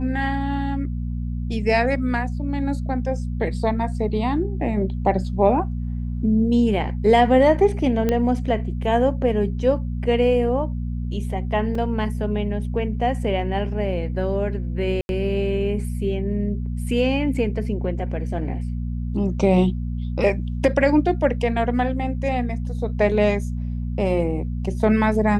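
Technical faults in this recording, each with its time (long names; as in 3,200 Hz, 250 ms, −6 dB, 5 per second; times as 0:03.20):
mains hum 60 Hz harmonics 4 −26 dBFS
0:08.09: click −9 dBFS
0:11.75: drop-out 3.1 ms
0:15.01–0:15.09: drop-out 81 ms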